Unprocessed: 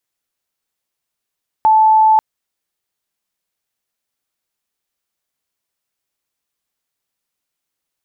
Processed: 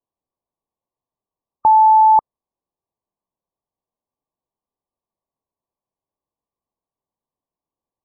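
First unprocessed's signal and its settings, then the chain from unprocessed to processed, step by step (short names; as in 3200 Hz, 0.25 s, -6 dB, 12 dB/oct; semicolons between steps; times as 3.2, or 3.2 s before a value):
tone sine 873 Hz -7 dBFS 0.54 s
brick-wall FIR low-pass 1200 Hz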